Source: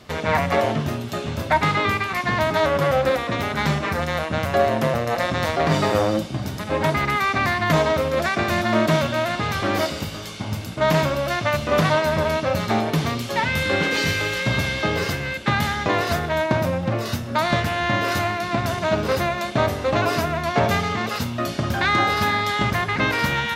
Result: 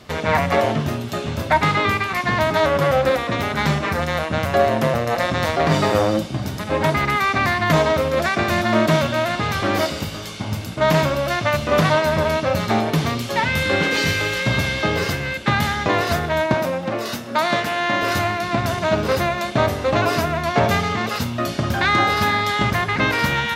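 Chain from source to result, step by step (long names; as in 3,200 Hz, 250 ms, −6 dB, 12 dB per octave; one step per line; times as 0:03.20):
0:16.54–0:18.03: high-pass filter 230 Hz 12 dB per octave
level +2 dB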